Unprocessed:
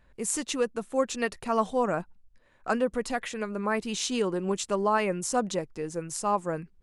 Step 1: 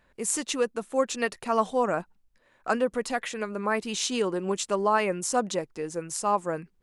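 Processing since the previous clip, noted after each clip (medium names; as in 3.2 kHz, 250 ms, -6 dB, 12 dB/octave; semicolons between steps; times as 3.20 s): bass shelf 130 Hz -11.5 dB; trim +2 dB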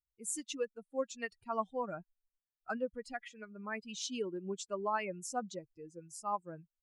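expander on every frequency bin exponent 2; trim -8 dB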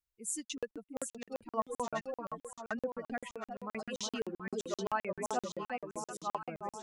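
echo whose repeats swap between lows and highs 366 ms, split 1 kHz, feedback 75%, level -3 dB; crackling interface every 0.13 s, samples 2048, zero, from 0.45 s; trim +1 dB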